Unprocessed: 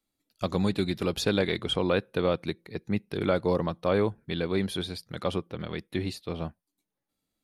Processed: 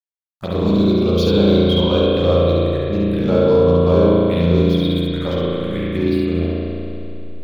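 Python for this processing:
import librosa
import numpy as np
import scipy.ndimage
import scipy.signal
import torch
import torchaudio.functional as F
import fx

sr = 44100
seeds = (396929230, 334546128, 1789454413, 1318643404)

p1 = fx.backlash(x, sr, play_db=-37.5)
p2 = fx.env_phaser(p1, sr, low_hz=400.0, high_hz=1900.0, full_db=-25.5)
p3 = p2 + fx.room_early_taps(p2, sr, ms=(13, 70), db=(-6.0, -3.0), dry=0)
p4 = fx.rev_spring(p3, sr, rt60_s=2.8, pass_ms=(35,), chirp_ms=30, drr_db=-5.5)
y = F.gain(torch.from_numpy(p4), 4.0).numpy()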